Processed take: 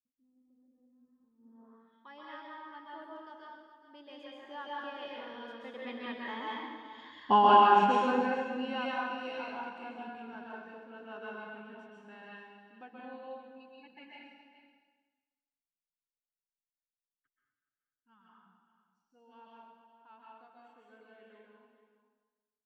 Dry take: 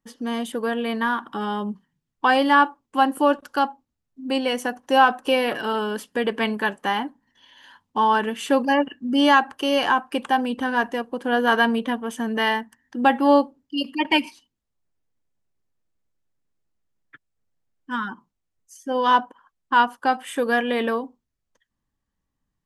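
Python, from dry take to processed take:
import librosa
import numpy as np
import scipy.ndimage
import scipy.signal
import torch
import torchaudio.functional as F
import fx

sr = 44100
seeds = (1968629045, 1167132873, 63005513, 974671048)

p1 = fx.doppler_pass(x, sr, speed_mps=29, closest_m=3.3, pass_at_s=7.26)
p2 = p1 + fx.echo_single(p1, sr, ms=424, db=-13.0, dry=0)
p3 = fx.rev_plate(p2, sr, seeds[0], rt60_s=1.3, hf_ratio=0.9, predelay_ms=115, drr_db=-5.0)
p4 = fx.filter_sweep_lowpass(p3, sr, from_hz=150.0, to_hz=3800.0, start_s=1.38, end_s=1.96, q=0.96)
y = F.gain(torch.from_numpy(p4), -1.0).numpy()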